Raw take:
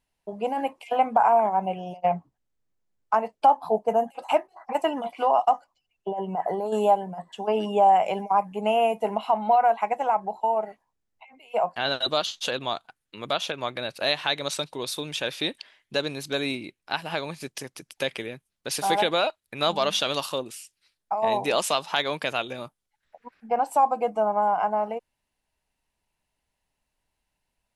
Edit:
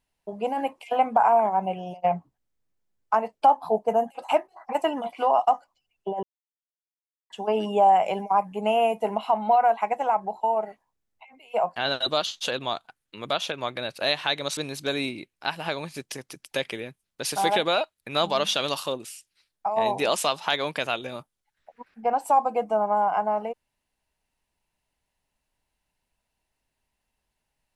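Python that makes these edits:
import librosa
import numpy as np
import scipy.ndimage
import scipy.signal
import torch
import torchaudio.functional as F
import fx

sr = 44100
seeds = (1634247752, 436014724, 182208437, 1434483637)

y = fx.edit(x, sr, fx.silence(start_s=6.23, length_s=1.07),
    fx.cut(start_s=14.57, length_s=1.46), tone=tone)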